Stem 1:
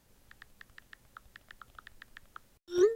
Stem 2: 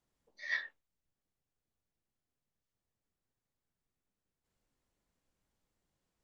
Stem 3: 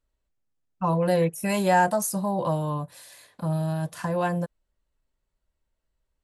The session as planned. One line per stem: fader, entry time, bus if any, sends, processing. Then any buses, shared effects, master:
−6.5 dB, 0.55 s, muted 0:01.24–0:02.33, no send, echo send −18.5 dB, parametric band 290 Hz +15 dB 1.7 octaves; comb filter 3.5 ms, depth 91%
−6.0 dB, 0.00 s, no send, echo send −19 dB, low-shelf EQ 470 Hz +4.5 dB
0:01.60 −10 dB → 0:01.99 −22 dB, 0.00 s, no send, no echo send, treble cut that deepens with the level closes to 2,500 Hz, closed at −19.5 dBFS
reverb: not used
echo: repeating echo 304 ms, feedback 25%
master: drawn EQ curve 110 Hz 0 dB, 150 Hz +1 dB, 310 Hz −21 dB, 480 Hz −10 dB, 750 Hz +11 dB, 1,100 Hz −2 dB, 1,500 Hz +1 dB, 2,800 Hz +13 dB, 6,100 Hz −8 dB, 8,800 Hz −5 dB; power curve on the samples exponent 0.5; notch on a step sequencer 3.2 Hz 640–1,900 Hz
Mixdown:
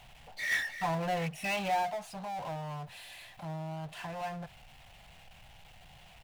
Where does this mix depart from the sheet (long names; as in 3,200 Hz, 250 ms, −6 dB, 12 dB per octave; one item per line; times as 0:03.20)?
stem 1: muted
stem 3 −10.0 dB → −16.5 dB
master: missing notch on a step sequencer 3.2 Hz 640–1,900 Hz